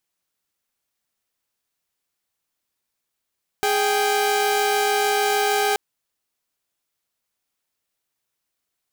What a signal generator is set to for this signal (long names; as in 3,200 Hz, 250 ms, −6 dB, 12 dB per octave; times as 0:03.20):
held notes G#4/G5 saw, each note −18.5 dBFS 2.13 s